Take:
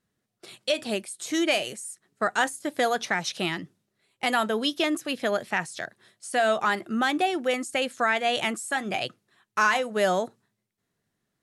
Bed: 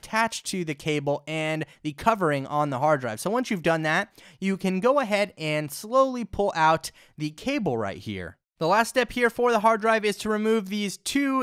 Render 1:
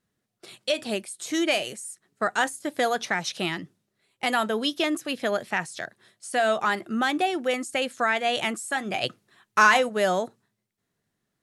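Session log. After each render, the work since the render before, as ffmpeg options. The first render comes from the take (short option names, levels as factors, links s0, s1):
-filter_complex "[0:a]asettb=1/sr,asplit=3[s0][s1][s2];[s0]atrim=end=9.034[s3];[s1]atrim=start=9.03:end=9.89,asetpts=PTS-STARTPTS,afade=t=in:d=0.004:c=qsin,afade=t=out:st=0.856:d=0.004:c=qsin,acontrast=25[s4];[s2]atrim=start=9.886[s5];[s3][s4]acrossfade=d=0.004:c1=hsin:c2=qsin[s6];[s6][s5]acrossfade=d=0.004:c1=qsin:c2=hsin"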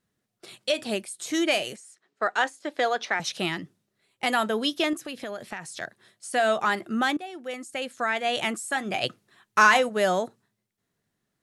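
-filter_complex "[0:a]asettb=1/sr,asplit=3[s0][s1][s2];[s0]atrim=end=1.764[s3];[s1]atrim=start=1.76:end=3.2,asetpts=PTS-STARTPTS,afade=t=in:d=0.004:c=qsin,afade=t=out:st=1.436:d=0.004:c=qsin,acrossover=split=280 6100:gain=0.126 1 0.112[s4][s5][s6];[s4][s5][s6]amix=inputs=3:normalize=0[s7];[s2]atrim=start=3.196[s8];[s3][s7]acrossfade=d=0.004:c1=hsin:c2=qsin[s9];[s9][s8]acrossfade=d=0.004:c1=qsin:c2=hsin,asettb=1/sr,asplit=3[s10][s11][s12];[s10]atrim=end=4.934[s13];[s11]atrim=start=4.93:end=5.81,asetpts=PTS-STARTPTS,afade=t=in:d=0.004:c=qsin,afade=t=out:st=0.876:d=0.004:c=qsin,acompressor=threshold=0.0282:ratio=6:attack=3.2:release=140:knee=1:detection=peak[s14];[s12]atrim=start=5.806[s15];[s13][s14]acrossfade=d=0.004:c1=hsin:c2=qsin[s16];[s16][s15]acrossfade=d=0.004:c1=qsin:c2=hsin,asplit=2[s17][s18];[s17]atrim=end=7.17,asetpts=PTS-STARTPTS,afade=t=out:st=7.166:d=0.004:c=hsin:silence=0.149624[s19];[s18]atrim=start=7.17,asetpts=PTS-STARTPTS,afade=t=in:d=1.35:silence=0.149624[s20];[s19][s20]concat=n=2:v=0:a=1"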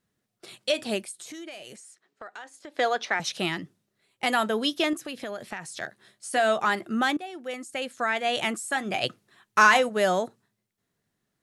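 -filter_complex "[0:a]asettb=1/sr,asplit=3[s0][s1][s2];[s0]atrim=end=1.114[s3];[s1]atrim=start=1.11:end=2.79,asetpts=PTS-STARTPTS,afade=t=in:d=0.004:c=qsin,afade=t=out:st=1.676:d=0.004:c=qsin,acompressor=threshold=0.0112:ratio=6:attack=3.2:release=140:knee=1:detection=peak[s4];[s2]atrim=start=2.786[s5];[s3][s4]acrossfade=d=0.004:c1=hsin:c2=qsin[s6];[s6][s5]acrossfade=d=0.004:c1=qsin:c2=hsin,asettb=1/sr,asplit=3[s7][s8][s9];[s7]atrim=end=5.824[s10];[s8]atrim=start=5.82:end=6.38,asetpts=PTS-STARTPTS,afade=t=in:d=0.004:c=qsin,afade=t=out:st=0.556:d=0.004:c=qsin,asplit=2[s11][s12];[s12]adelay=15,volume=0.501[s13];[s11][s13]amix=inputs=2:normalize=0,atrim=end_sample=24696[s14];[s9]atrim=start=6.376[s15];[s10][s14]acrossfade=d=0.004:c1=hsin:c2=qsin[s16];[s16][s15]acrossfade=d=0.004:c1=qsin:c2=hsin"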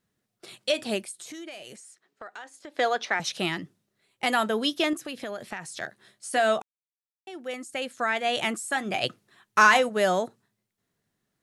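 -filter_complex "[0:a]asplit=3[s0][s1][s2];[s0]atrim=end=6.62,asetpts=PTS-STARTPTS,afade=t=out:st=6.616:d=0.004:c=hsin[s3];[s1]atrim=start=6.62:end=7.27,asetpts=PTS-STARTPTS,volume=0[s4];[s2]atrim=start=7.27,asetpts=PTS-STARTPTS,afade=t=in:d=0.004:c=hsin[s5];[s3][s4][s5]concat=n=3:v=0:a=1"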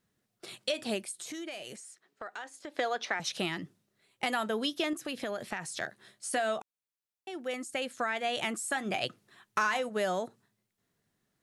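-af "acompressor=threshold=0.0316:ratio=3"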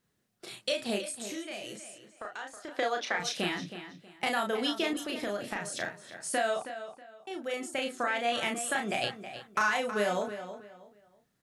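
-filter_complex "[0:a]asplit=2[s0][s1];[s1]adelay=34,volume=0.631[s2];[s0][s2]amix=inputs=2:normalize=0,asplit=2[s3][s4];[s4]adelay=320,lowpass=f=4500:p=1,volume=0.282,asplit=2[s5][s6];[s6]adelay=320,lowpass=f=4500:p=1,volume=0.28,asplit=2[s7][s8];[s8]adelay=320,lowpass=f=4500:p=1,volume=0.28[s9];[s3][s5][s7][s9]amix=inputs=4:normalize=0"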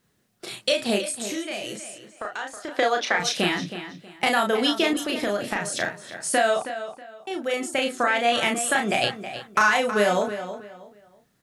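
-af "volume=2.66"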